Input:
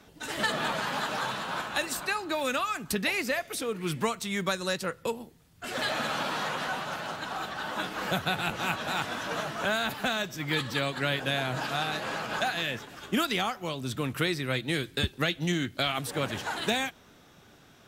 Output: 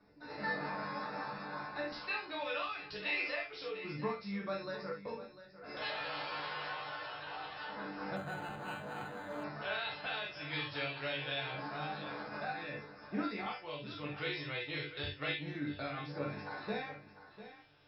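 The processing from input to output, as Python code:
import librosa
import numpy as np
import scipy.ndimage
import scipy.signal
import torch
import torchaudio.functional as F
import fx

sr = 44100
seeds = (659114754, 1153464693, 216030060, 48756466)

y = fx.resonator_bank(x, sr, root=43, chord='fifth', decay_s=0.2)
y = fx.filter_lfo_notch(y, sr, shape='square', hz=0.26, low_hz=220.0, high_hz=3100.0, q=0.93)
y = scipy.signal.sosfilt(scipy.signal.cheby1(10, 1.0, 5400.0, 'lowpass', fs=sr, output='sos'), y)
y = fx.doubler(y, sr, ms=14.0, db=-7.5)
y = y + 10.0 ** (-13.5 / 20.0) * np.pad(y, (int(698 * sr / 1000.0), 0))[:len(y)]
y = fx.rev_gated(y, sr, seeds[0], gate_ms=90, shape='flat', drr_db=0.0)
y = fx.resample_linear(y, sr, factor=8, at=(8.16, 9.44))
y = y * librosa.db_to_amplitude(-1.5)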